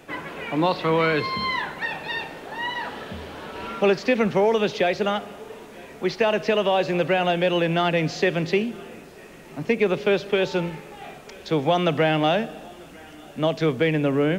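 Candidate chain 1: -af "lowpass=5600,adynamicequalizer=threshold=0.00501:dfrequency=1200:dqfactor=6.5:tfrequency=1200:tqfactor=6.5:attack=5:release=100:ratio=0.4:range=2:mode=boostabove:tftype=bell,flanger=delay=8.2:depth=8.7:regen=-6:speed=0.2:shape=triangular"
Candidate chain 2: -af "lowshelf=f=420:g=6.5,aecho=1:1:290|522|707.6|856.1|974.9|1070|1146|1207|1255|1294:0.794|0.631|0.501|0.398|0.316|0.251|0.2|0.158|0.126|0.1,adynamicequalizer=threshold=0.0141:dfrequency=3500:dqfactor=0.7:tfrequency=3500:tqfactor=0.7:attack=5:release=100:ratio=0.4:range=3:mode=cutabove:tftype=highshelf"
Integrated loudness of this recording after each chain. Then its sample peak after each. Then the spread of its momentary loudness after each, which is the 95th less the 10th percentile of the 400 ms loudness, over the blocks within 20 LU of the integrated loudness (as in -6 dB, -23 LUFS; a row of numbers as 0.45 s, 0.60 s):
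-26.0 LUFS, -17.5 LUFS; -10.5 dBFS, -2.0 dBFS; 18 LU, 9 LU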